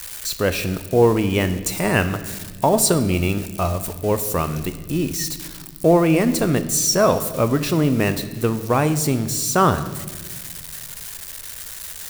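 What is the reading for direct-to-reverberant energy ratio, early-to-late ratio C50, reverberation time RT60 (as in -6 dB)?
10.0 dB, 12.0 dB, 1.4 s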